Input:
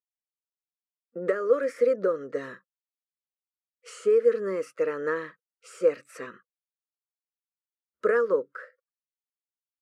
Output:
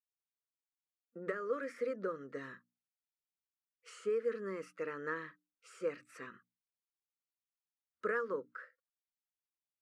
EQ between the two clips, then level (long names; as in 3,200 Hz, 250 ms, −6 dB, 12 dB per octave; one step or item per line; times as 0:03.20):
parametric band 540 Hz −10.5 dB 1.2 octaves
high-shelf EQ 4,400 Hz −8 dB
mains-hum notches 60/120/180/240/300 Hz
−5.0 dB